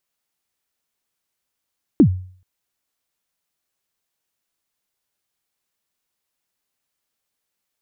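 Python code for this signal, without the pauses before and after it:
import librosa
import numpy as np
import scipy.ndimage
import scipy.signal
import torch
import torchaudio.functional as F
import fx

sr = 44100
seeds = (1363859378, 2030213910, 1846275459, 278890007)

y = fx.drum_kick(sr, seeds[0], length_s=0.43, level_db=-4.5, start_hz=350.0, end_hz=92.0, sweep_ms=83.0, decay_s=0.49, click=False)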